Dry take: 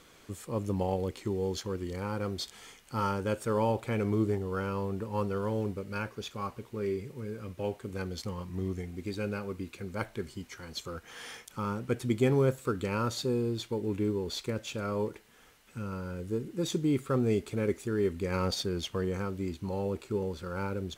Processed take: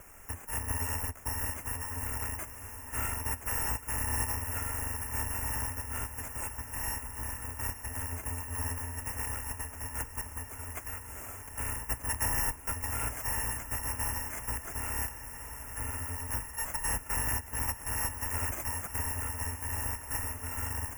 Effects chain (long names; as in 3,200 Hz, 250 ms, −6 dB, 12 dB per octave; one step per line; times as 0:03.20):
samples in bit-reversed order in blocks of 256 samples
low-shelf EQ 230 Hz +7 dB
in parallel at −4.5 dB: sample-rate reduction 4,600 Hz, jitter 0%
on the sum: Butterworth band-reject 4,000 Hz, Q 1
on a send: feedback delay with all-pass diffusion 1,053 ms, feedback 71%, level −14 dB
on the sum: multiband upward and downward compressor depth 40%
level −5 dB